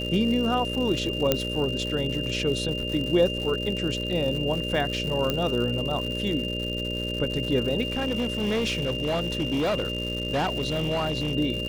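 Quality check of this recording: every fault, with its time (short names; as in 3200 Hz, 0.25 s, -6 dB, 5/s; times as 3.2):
buzz 60 Hz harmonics 10 -32 dBFS
crackle 190/s -31 dBFS
tone 2800 Hz -31 dBFS
1.32 pop -6 dBFS
5.3 pop -11 dBFS
7.87–11.35 clipped -21.5 dBFS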